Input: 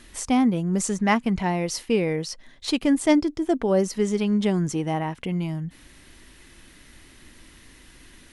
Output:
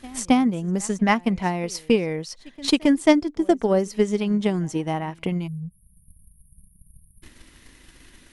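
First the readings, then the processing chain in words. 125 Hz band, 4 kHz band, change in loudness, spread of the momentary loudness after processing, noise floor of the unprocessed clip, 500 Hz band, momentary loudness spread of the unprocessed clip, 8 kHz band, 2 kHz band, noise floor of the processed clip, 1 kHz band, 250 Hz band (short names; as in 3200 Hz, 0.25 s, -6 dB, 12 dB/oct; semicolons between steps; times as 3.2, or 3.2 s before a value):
-1.0 dB, +2.5 dB, +1.5 dB, 10 LU, -51 dBFS, +1.5 dB, 8 LU, -1.5 dB, +1.5 dB, -57 dBFS, +1.5 dB, +1.0 dB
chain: pre-echo 0.271 s -21 dB; spectral delete 5.47–7.23, 210–8900 Hz; transient shaper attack +8 dB, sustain -3 dB; gain -1.5 dB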